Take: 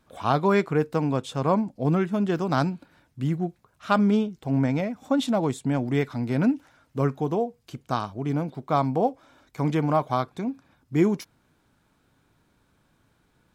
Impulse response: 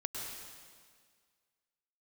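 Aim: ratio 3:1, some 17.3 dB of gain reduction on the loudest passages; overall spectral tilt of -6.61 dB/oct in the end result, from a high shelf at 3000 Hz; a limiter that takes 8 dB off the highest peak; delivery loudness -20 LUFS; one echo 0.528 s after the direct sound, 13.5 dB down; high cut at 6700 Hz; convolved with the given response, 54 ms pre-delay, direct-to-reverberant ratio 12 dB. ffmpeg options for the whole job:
-filter_complex "[0:a]lowpass=6.7k,highshelf=f=3k:g=-5.5,acompressor=threshold=-41dB:ratio=3,alimiter=level_in=8dB:limit=-24dB:level=0:latency=1,volume=-8dB,aecho=1:1:528:0.211,asplit=2[a][b];[1:a]atrim=start_sample=2205,adelay=54[c];[b][c]afir=irnorm=-1:irlink=0,volume=-13.5dB[d];[a][d]amix=inputs=2:normalize=0,volume=22.5dB"

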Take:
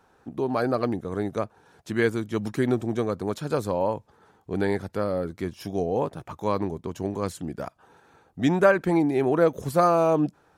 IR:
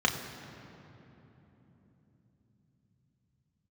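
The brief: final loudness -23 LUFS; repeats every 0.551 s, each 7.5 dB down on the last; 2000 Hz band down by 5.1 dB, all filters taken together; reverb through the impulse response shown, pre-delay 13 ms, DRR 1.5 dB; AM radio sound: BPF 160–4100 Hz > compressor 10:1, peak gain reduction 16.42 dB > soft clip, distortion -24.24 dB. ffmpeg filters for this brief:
-filter_complex "[0:a]equalizer=f=2k:t=o:g=-7,aecho=1:1:551|1102|1653|2204|2755:0.422|0.177|0.0744|0.0312|0.0131,asplit=2[a][b];[1:a]atrim=start_sample=2205,adelay=13[c];[b][c]afir=irnorm=-1:irlink=0,volume=-13.5dB[d];[a][d]amix=inputs=2:normalize=0,highpass=160,lowpass=4.1k,acompressor=threshold=-29dB:ratio=10,asoftclip=threshold=-22dB,volume=11.5dB"

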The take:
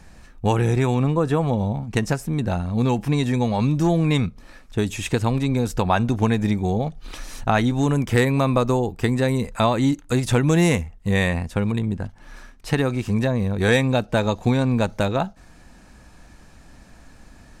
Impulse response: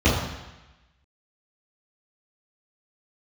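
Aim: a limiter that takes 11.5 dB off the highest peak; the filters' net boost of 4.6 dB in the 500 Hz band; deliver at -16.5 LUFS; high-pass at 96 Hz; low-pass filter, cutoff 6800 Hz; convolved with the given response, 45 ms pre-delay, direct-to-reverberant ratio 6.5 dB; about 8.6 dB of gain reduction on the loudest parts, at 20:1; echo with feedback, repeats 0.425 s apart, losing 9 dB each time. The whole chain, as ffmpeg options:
-filter_complex "[0:a]highpass=96,lowpass=6.8k,equalizer=f=500:t=o:g=5.5,acompressor=threshold=-19dB:ratio=20,alimiter=limit=-17.5dB:level=0:latency=1,aecho=1:1:425|850|1275|1700:0.355|0.124|0.0435|0.0152,asplit=2[a][b];[1:a]atrim=start_sample=2205,adelay=45[c];[b][c]afir=irnorm=-1:irlink=0,volume=-26dB[d];[a][d]amix=inputs=2:normalize=0,volume=6.5dB"

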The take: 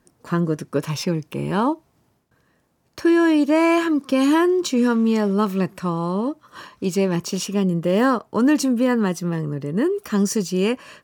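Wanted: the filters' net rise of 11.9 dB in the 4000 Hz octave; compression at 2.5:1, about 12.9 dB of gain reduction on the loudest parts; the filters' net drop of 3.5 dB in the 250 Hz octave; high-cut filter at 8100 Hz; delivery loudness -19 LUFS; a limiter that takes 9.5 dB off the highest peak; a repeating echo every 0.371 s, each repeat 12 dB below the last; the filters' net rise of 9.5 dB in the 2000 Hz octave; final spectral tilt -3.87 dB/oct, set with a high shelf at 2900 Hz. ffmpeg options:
-af "lowpass=8.1k,equalizer=f=250:t=o:g=-5,equalizer=f=2k:t=o:g=7,highshelf=f=2.9k:g=8.5,equalizer=f=4k:t=o:g=7,acompressor=threshold=-31dB:ratio=2.5,alimiter=limit=-21.5dB:level=0:latency=1,aecho=1:1:371|742|1113:0.251|0.0628|0.0157,volume=12dB"

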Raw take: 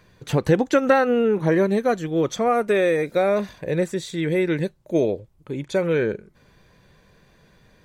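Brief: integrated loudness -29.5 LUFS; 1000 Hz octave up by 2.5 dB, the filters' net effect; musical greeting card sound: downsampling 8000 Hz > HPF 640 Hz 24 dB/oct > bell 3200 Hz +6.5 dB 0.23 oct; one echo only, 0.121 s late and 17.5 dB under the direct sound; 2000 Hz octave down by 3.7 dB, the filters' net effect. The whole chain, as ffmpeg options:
-af "equalizer=f=1k:t=o:g=7,equalizer=f=2k:t=o:g=-8,aecho=1:1:121:0.133,aresample=8000,aresample=44100,highpass=f=640:w=0.5412,highpass=f=640:w=1.3066,equalizer=f=3.2k:t=o:w=0.23:g=6.5,volume=-2.5dB"

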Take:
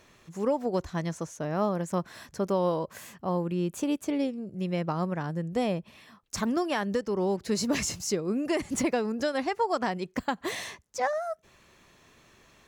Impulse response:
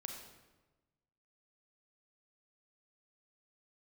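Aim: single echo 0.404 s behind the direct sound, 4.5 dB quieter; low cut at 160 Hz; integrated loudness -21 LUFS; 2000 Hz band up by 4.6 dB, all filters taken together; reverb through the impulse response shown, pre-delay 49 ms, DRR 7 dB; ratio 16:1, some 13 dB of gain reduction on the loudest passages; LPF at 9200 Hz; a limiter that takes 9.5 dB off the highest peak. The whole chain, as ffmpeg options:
-filter_complex "[0:a]highpass=160,lowpass=9.2k,equalizer=f=2k:t=o:g=5.5,acompressor=threshold=-35dB:ratio=16,alimiter=level_in=8dB:limit=-24dB:level=0:latency=1,volume=-8dB,aecho=1:1:404:0.596,asplit=2[a][b];[1:a]atrim=start_sample=2205,adelay=49[c];[b][c]afir=irnorm=-1:irlink=0,volume=-4.5dB[d];[a][d]amix=inputs=2:normalize=0,volume=19.5dB"

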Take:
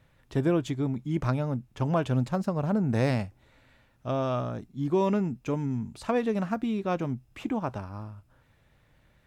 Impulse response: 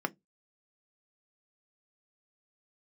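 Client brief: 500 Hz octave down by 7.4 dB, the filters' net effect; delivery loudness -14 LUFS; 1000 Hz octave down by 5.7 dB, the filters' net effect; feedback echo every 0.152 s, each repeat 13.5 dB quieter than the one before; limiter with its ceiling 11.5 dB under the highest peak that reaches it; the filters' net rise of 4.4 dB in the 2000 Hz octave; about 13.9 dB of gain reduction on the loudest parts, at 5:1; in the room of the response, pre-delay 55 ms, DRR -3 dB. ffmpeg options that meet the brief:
-filter_complex "[0:a]equalizer=f=500:t=o:g=-8.5,equalizer=f=1k:t=o:g=-7,equalizer=f=2k:t=o:g=8.5,acompressor=threshold=-39dB:ratio=5,alimiter=level_in=15.5dB:limit=-24dB:level=0:latency=1,volume=-15.5dB,aecho=1:1:152|304:0.211|0.0444,asplit=2[a][b];[1:a]atrim=start_sample=2205,adelay=55[c];[b][c]afir=irnorm=-1:irlink=0,volume=-2.5dB[d];[a][d]amix=inputs=2:normalize=0,volume=28.5dB"

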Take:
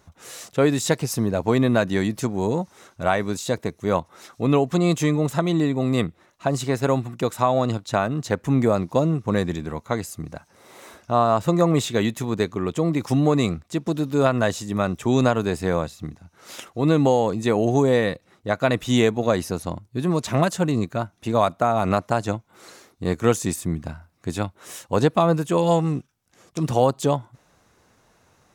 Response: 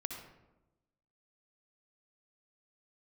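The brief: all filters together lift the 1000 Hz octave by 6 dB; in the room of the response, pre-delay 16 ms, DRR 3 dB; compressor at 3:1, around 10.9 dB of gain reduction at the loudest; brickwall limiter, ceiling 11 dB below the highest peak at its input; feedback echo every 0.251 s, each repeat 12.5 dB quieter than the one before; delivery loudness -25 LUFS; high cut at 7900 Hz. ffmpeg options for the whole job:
-filter_complex "[0:a]lowpass=7.9k,equalizer=f=1k:t=o:g=8,acompressor=threshold=-24dB:ratio=3,alimiter=limit=-18.5dB:level=0:latency=1,aecho=1:1:251|502|753:0.237|0.0569|0.0137,asplit=2[a][b];[1:a]atrim=start_sample=2205,adelay=16[c];[b][c]afir=irnorm=-1:irlink=0,volume=-2.5dB[d];[a][d]amix=inputs=2:normalize=0,volume=3.5dB"

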